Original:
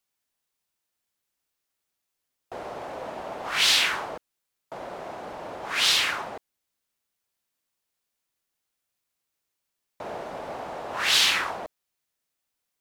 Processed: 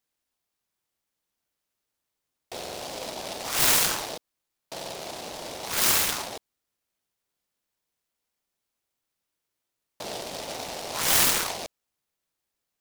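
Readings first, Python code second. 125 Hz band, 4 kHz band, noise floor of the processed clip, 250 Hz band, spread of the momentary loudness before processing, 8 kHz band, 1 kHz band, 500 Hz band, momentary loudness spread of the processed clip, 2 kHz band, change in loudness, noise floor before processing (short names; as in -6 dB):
+6.0 dB, -5.0 dB, -84 dBFS, +3.5 dB, 19 LU, +6.0 dB, -1.0 dB, 0.0 dB, 20 LU, -4.5 dB, -1.5 dB, -82 dBFS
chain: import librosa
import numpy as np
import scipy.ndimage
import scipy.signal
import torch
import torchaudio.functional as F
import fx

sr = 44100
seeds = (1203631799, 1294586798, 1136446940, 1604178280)

y = fx.buffer_glitch(x, sr, at_s=(2.57, 4.72, 8.16, 9.51), block=2048, repeats=4)
y = fx.noise_mod_delay(y, sr, seeds[0], noise_hz=3800.0, depth_ms=0.16)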